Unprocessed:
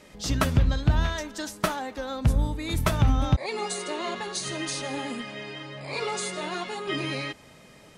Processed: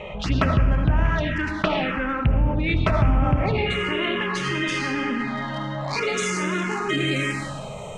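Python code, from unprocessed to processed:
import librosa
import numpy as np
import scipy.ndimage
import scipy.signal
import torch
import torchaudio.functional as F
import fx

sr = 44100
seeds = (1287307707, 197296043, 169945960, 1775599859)

y = fx.wiener(x, sr, points=9)
y = fx.rev_freeverb(y, sr, rt60_s=1.1, hf_ratio=0.9, predelay_ms=35, drr_db=4.0)
y = fx.env_phaser(y, sr, low_hz=260.0, high_hz=3800.0, full_db=-19.0)
y = fx.filter_sweep_lowpass(y, sr, from_hz=2700.0, to_hz=8700.0, start_s=3.68, end_s=7.68, q=2.7)
y = fx.env_flatten(y, sr, amount_pct=50)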